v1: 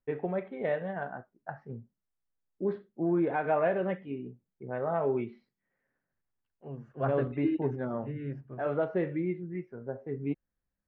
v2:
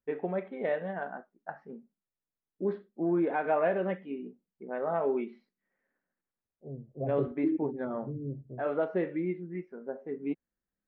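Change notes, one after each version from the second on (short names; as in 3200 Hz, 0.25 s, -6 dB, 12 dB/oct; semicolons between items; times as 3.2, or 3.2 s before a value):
first voice: add brick-wall FIR high-pass 160 Hz; second voice: add steep low-pass 610 Hz 36 dB/oct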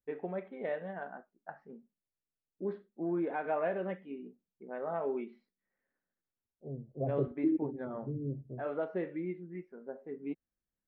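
first voice -5.5 dB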